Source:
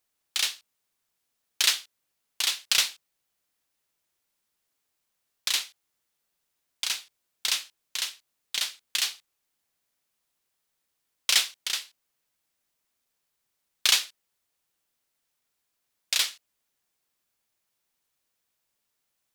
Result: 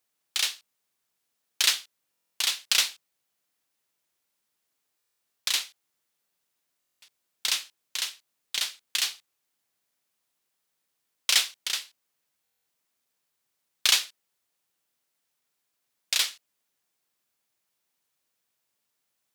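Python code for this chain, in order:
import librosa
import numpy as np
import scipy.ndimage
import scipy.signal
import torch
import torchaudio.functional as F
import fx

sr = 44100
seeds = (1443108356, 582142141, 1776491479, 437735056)

y = scipy.signal.sosfilt(scipy.signal.butter(2, 100.0, 'highpass', fs=sr, output='sos'), x)
y = fx.buffer_glitch(y, sr, at_s=(2.11, 4.97, 6.79, 12.43), block=1024, repeats=9)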